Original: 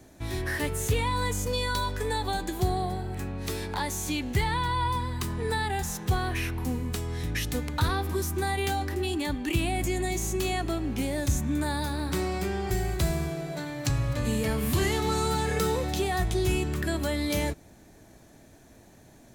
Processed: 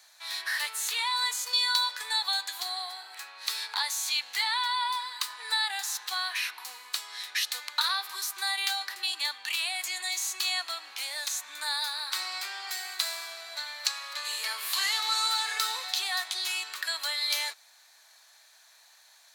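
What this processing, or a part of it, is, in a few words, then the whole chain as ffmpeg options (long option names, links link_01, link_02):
headphones lying on a table: -af "highpass=frequency=1000:width=0.5412,highpass=frequency=1000:width=1.3066,equalizer=frequency=4200:width_type=o:width=0.48:gain=11,volume=1.5dB"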